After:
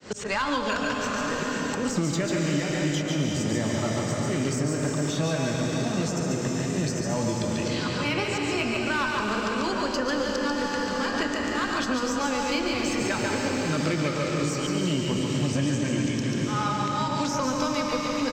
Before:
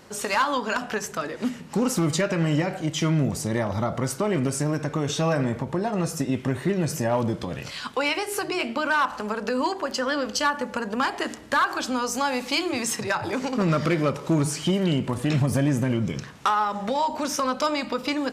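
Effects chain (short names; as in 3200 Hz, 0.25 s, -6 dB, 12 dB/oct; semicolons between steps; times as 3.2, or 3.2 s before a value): opening faded in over 0.60 s; steep low-pass 8200 Hz 96 dB/oct; bell 930 Hz -5 dB 1.1 oct; added harmonics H 8 -31 dB, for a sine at -13 dBFS; resonator 96 Hz, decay 0.45 s, harmonics odd, mix 60%; auto swell 0.229 s; notches 50/100 Hz; echo 0.141 s -4.5 dB; on a send at -1 dB: reverb RT60 4.6 s, pre-delay 0.103 s; on the sum: three-band squash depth 100%; gain +4 dB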